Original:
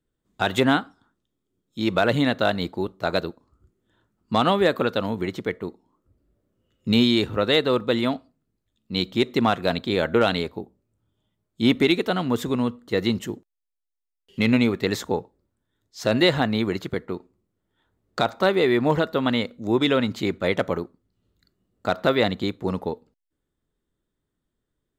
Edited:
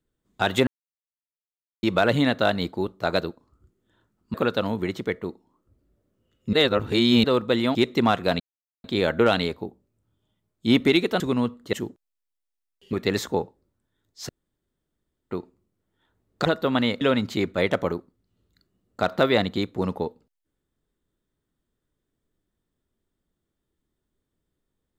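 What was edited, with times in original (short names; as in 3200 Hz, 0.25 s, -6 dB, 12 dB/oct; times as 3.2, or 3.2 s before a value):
0.67–1.83 mute
4.34–4.73 cut
6.92–7.63 reverse
8.14–9.14 cut
9.79 insert silence 0.44 s
12.15–12.42 cut
12.95–13.2 cut
14.4–14.7 cut
16.06–17.08 room tone
18.22–18.96 cut
19.52–19.87 cut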